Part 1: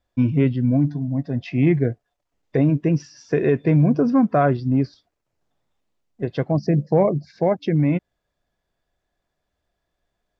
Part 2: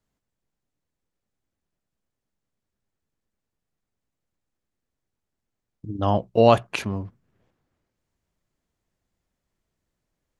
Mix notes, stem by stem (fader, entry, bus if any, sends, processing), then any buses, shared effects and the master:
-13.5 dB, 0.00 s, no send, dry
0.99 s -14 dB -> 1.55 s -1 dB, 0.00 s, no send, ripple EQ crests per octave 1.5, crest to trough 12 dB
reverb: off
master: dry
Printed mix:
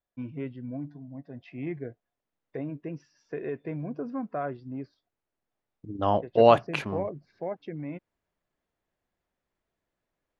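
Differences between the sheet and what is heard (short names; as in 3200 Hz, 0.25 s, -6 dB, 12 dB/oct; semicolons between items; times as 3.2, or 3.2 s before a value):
stem 2: missing ripple EQ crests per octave 1.5, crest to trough 12 dB; master: extra tone controls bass -8 dB, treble -11 dB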